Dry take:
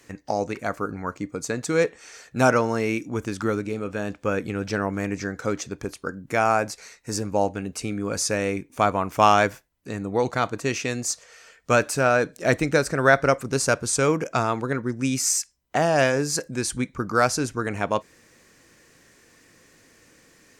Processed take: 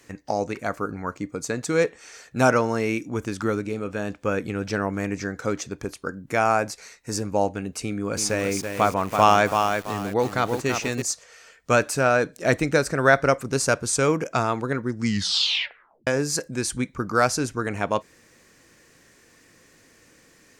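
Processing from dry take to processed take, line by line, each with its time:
7.82–11.02 s: bit-crushed delay 332 ms, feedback 35%, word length 6-bit, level -5 dB
14.91 s: tape stop 1.16 s

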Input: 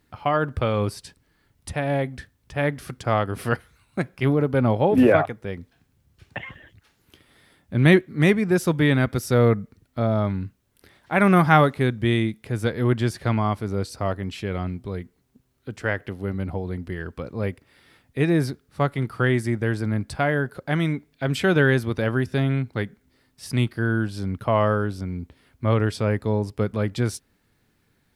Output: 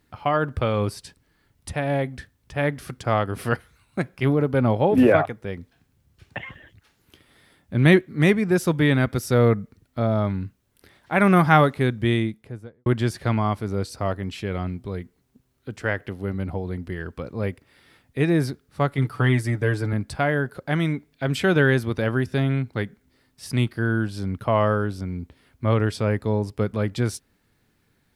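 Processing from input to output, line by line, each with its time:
12.07–12.86 s: studio fade out
18.97–19.93 s: comb 6.9 ms

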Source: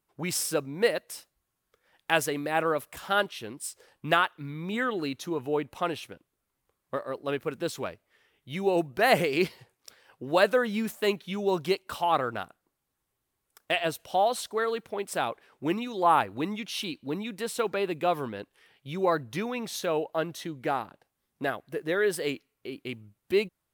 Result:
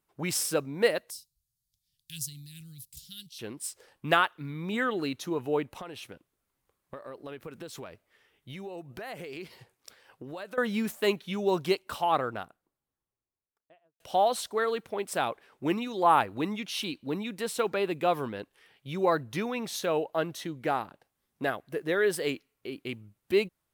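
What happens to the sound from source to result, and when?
1.10–3.39 s: Chebyshev band-stop 140–4300 Hz, order 3
5.81–10.58 s: compression, threshold -38 dBFS
11.72–14.00 s: studio fade out

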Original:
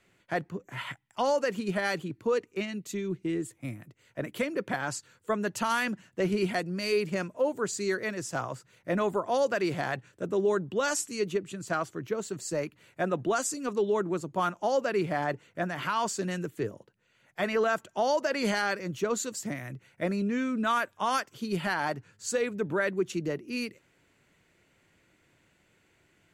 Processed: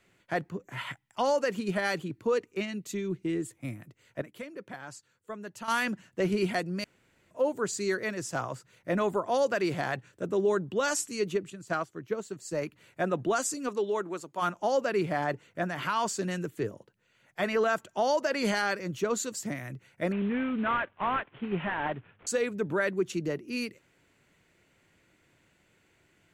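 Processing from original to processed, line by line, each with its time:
4.22–5.68 s: gain -11 dB
6.84–7.31 s: room tone
11.50–12.62 s: upward expansion, over -48 dBFS
13.68–14.41 s: high-pass 280 Hz -> 990 Hz 6 dB/octave
20.12–22.27 s: CVSD coder 16 kbps

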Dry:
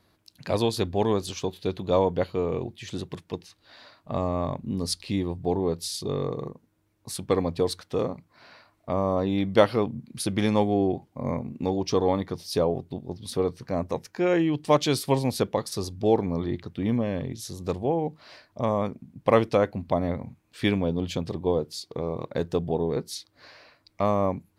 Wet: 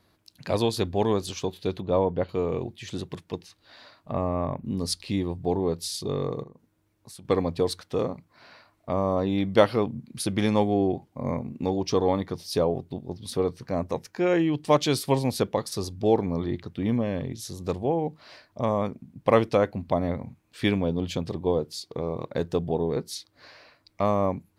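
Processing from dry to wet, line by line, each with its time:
1.81–2.29 s: tape spacing loss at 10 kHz 23 dB
4.12–4.65 s: high-order bell 5.4 kHz -11.5 dB
6.43–7.25 s: compression 2.5:1, threshold -47 dBFS

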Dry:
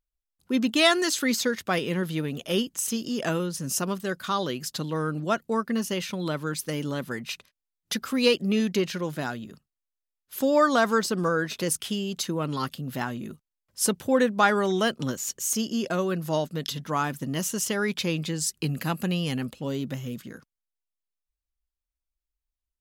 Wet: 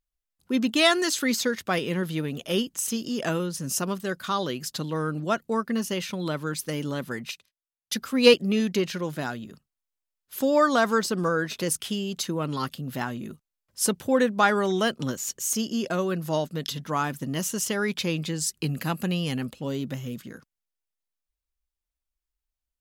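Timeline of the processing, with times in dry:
7.31–8.34 s: three bands expanded up and down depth 70%

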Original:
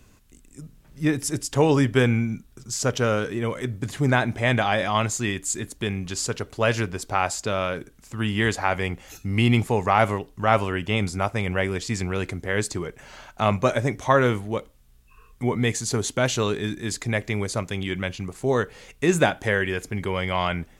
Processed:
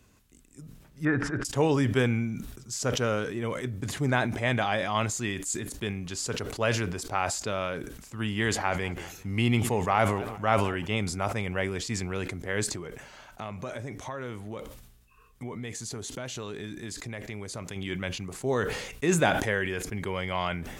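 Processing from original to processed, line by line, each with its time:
1.05–1.45 s: resonant low-pass 1.5 kHz, resonance Q 4.7
8.32–10.85 s: modulated delay 195 ms, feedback 36%, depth 201 cents, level -21.5 dB
12.74–17.76 s: compression, threshold -28 dBFS
whole clip: high-pass 53 Hz 6 dB/octave; decay stretcher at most 52 dB/s; trim -5.5 dB

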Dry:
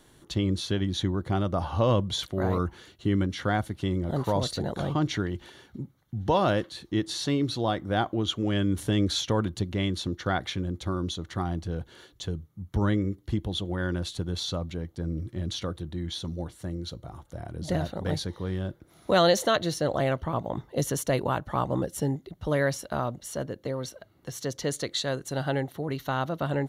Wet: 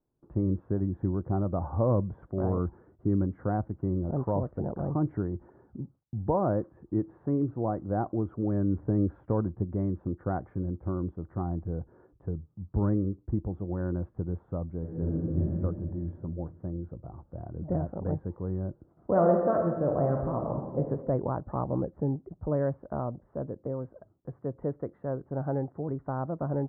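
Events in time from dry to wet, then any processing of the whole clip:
14.79–15.44 s: reverb throw, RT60 2.5 s, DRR -5 dB
19.10–20.79 s: reverb throw, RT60 1.2 s, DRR 1.5 dB
whole clip: gate with hold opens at -44 dBFS; Bessel low-pass 750 Hz, order 8; trim -1 dB

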